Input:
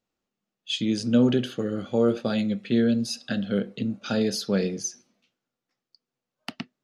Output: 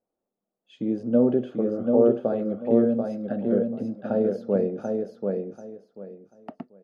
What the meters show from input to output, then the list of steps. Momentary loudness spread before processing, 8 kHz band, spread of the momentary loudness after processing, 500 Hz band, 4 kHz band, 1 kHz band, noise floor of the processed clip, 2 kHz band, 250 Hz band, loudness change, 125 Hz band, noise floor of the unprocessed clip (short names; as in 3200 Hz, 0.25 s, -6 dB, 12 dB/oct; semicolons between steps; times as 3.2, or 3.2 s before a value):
11 LU, under -25 dB, 22 LU, +5.0 dB, under -25 dB, +1.5 dB, under -85 dBFS, under -10 dB, 0.0 dB, +1.0 dB, -4.0 dB, under -85 dBFS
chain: EQ curve 110 Hz 0 dB, 630 Hz +14 dB, 4000 Hz -22 dB; on a send: feedback echo 0.738 s, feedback 22%, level -4 dB; on the sum: gain -8 dB